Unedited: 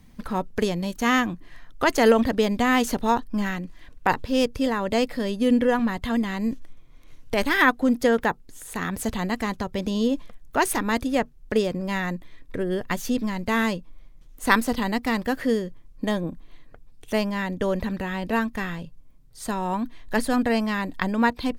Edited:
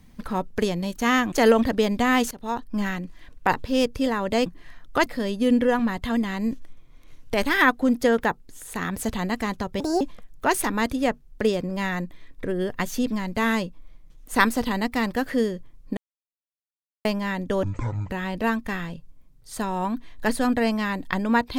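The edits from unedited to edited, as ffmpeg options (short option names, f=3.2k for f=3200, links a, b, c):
-filter_complex "[0:a]asplit=11[a][b][c][d][e][f][g][h][i][j][k];[a]atrim=end=1.322[l];[b]atrim=start=1.918:end=2.91,asetpts=PTS-STARTPTS,afade=t=out:st=0.988:d=0.004:c=hsin:silence=0.0944061[m];[c]atrim=start=2.91:end=5.062,asetpts=PTS-STARTPTS,afade=t=in:d=0.51:silence=0.0944061[n];[d]atrim=start=1.318:end=1.922[o];[e]atrim=start=5.058:end=9.804[p];[f]atrim=start=9.8:end=10.12,asetpts=PTS-STARTPTS,asetrate=67473,aresample=44100[q];[g]atrim=start=10.116:end=16.08,asetpts=PTS-STARTPTS,afade=t=out:st=5.96:d=0.004:c=hsin[r];[h]atrim=start=16.08:end=17.16,asetpts=PTS-STARTPTS,volume=0[s];[i]atrim=start=17.16:end=17.744,asetpts=PTS-STARTPTS,afade=t=in:d=0.004:c=hsin[t];[j]atrim=start=17.74:end=17.99,asetpts=PTS-STARTPTS,asetrate=23373,aresample=44100[u];[k]atrim=start=17.986[v];[m][n]concat=n=2:v=0:a=1[w];[l][w]acrossfade=d=0.004:c1=hsin:c2=hsin[x];[x][o]acrossfade=d=0.004:c1=hsin:c2=hsin[y];[y][p]acrossfade=d=0.004:c1=hsin:c2=hsin[z];[z][q]acrossfade=d=0.004:c1=hsin:c2=hsin[aa];[r][s][t]concat=n=3:v=0:a=1[ab];[aa][ab]acrossfade=d=0.004:c1=hsin:c2=hsin[ac];[ac][u]acrossfade=d=0.004:c1=hsin:c2=hsin[ad];[ad][v]acrossfade=d=0.004:c1=hsin:c2=hsin"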